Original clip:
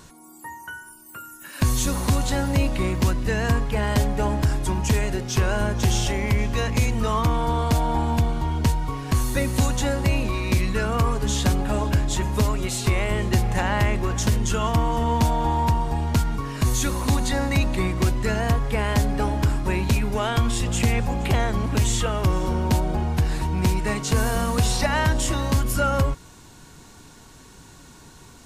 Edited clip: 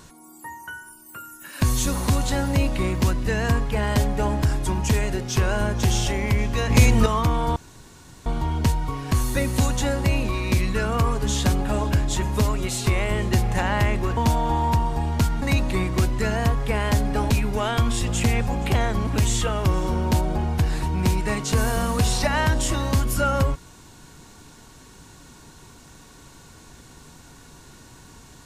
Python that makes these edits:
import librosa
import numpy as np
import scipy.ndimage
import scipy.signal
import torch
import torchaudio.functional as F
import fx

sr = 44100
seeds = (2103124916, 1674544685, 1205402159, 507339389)

y = fx.edit(x, sr, fx.clip_gain(start_s=6.7, length_s=0.36, db=6.5),
    fx.room_tone_fill(start_s=7.56, length_s=0.7),
    fx.cut(start_s=14.17, length_s=0.95),
    fx.cut(start_s=16.37, length_s=1.09),
    fx.cut(start_s=19.34, length_s=0.55), tone=tone)